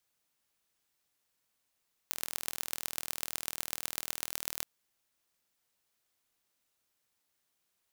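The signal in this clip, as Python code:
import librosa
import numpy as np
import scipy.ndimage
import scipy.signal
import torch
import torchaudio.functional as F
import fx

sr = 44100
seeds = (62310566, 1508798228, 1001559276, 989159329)

y = fx.impulse_train(sr, length_s=2.53, per_s=40.1, accent_every=5, level_db=-4.5)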